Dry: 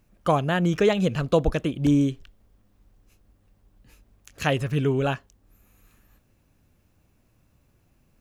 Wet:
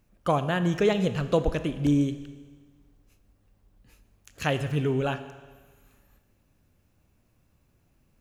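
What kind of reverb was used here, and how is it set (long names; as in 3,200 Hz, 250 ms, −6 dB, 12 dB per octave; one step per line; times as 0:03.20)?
four-comb reverb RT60 1.5 s, combs from 27 ms, DRR 11 dB
level −3 dB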